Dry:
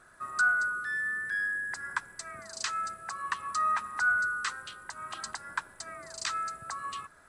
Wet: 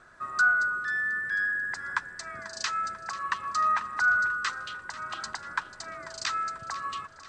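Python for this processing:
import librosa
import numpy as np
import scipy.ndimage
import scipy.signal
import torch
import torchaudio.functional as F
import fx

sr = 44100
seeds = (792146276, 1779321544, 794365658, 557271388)

p1 = scipy.signal.sosfilt(scipy.signal.butter(4, 6700.0, 'lowpass', fs=sr, output='sos'), x)
p2 = p1 + fx.echo_feedback(p1, sr, ms=491, feedback_pct=55, wet_db=-16, dry=0)
y = p2 * librosa.db_to_amplitude(3.0)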